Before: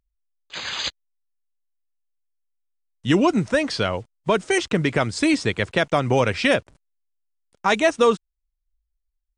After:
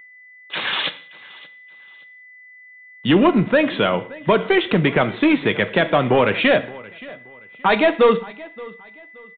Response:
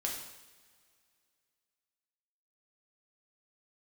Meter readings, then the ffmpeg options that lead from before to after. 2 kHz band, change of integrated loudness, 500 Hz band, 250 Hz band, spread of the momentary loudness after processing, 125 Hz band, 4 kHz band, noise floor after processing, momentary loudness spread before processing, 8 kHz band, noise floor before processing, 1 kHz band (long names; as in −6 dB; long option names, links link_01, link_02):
+3.5 dB, +3.5 dB, +4.0 dB, +4.0 dB, 20 LU, +1.5 dB, +3.0 dB, −46 dBFS, 10 LU, below −40 dB, −78 dBFS, +3.5 dB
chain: -filter_complex "[0:a]highpass=frequency=140:width=0.5412,highpass=frequency=140:width=1.3066,asplit=2[link_01][link_02];[link_02]acompressor=threshold=-29dB:ratio=6,volume=-3dB[link_03];[link_01][link_03]amix=inputs=2:normalize=0,aeval=exprs='val(0)+0.00501*sin(2*PI*2000*n/s)':channel_layout=same,asoftclip=type=tanh:threshold=-12dB,aecho=1:1:574|1148:0.0891|0.0267,asplit=2[link_04][link_05];[1:a]atrim=start_sample=2205,afade=type=out:start_time=0.42:duration=0.01,atrim=end_sample=18963,asetrate=74970,aresample=44100[link_06];[link_05][link_06]afir=irnorm=-1:irlink=0,volume=-3.5dB[link_07];[link_04][link_07]amix=inputs=2:normalize=0,aresample=8000,aresample=44100,volume=2dB"